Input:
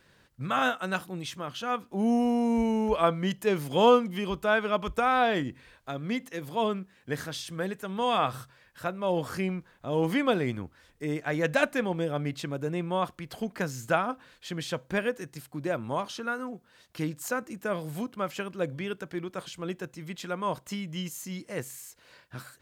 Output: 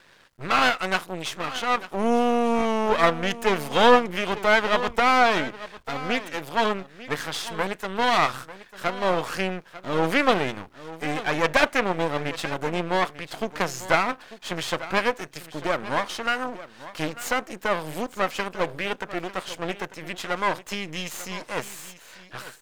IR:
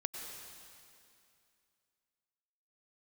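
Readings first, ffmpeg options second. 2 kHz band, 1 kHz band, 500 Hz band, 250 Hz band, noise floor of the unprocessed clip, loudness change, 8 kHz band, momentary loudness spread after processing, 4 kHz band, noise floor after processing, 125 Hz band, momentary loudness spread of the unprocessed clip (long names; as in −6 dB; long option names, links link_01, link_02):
+8.0 dB, +6.5 dB, +4.0 dB, +0.5 dB, −62 dBFS, +5.0 dB, +6.0 dB, 14 LU, +8.0 dB, −51 dBFS, −1.0 dB, 13 LU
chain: -filter_complex "[0:a]aeval=exprs='max(val(0),0)':channel_layout=same,aecho=1:1:895:0.158,asplit=2[link_01][link_02];[link_02]highpass=frequency=720:poles=1,volume=12dB,asoftclip=type=tanh:threshold=-9dB[link_03];[link_01][link_03]amix=inputs=2:normalize=0,lowpass=frequency=4800:poles=1,volume=-6dB,volume=6dB"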